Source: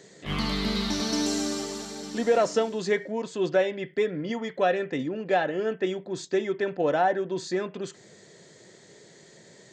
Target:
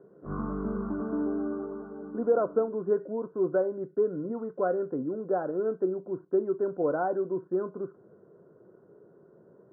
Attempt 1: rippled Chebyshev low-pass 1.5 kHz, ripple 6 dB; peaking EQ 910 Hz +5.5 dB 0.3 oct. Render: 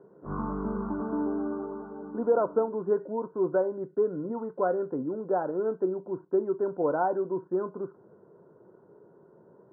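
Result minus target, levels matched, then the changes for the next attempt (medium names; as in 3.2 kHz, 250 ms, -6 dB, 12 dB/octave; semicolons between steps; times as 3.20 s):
1 kHz band +3.0 dB
change: peaking EQ 910 Hz -5 dB 0.3 oct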